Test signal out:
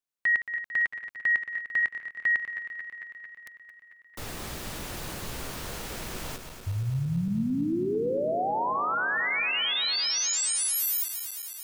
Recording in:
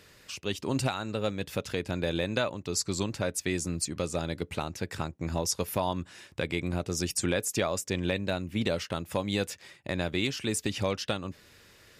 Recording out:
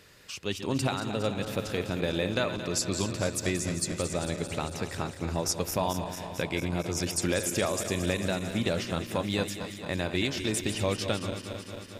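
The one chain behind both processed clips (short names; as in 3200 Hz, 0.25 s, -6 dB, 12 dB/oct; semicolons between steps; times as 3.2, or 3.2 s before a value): regenerating reverse delay 0.112 s, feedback 84%, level -10.5 dB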